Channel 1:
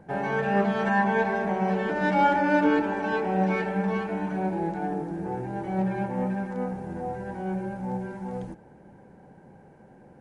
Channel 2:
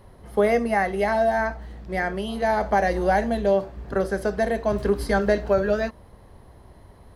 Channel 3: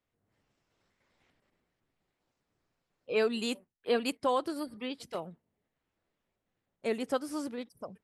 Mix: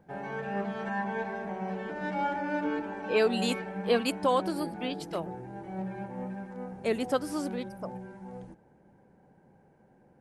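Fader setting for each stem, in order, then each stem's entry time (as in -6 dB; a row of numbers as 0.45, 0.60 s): -9.5 dB, off, +3.0 dB; 0.00 s, off, 0.00 s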